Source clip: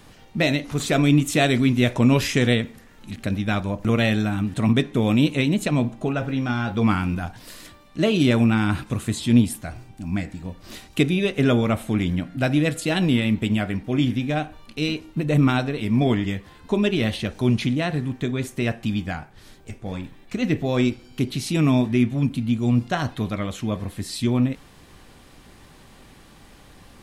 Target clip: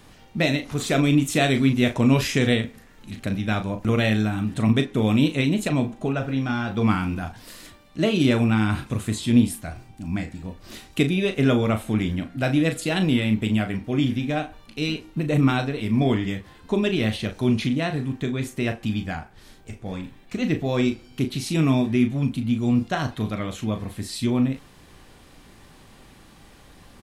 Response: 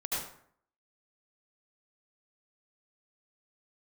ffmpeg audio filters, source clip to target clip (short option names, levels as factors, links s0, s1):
-filter_complex "[0:a]asplit=2[s0][s1];[s1]adelay=37,volume=0.355[s2];[s0][s2]amix=inputs=2:normalize=0,volume=0.841"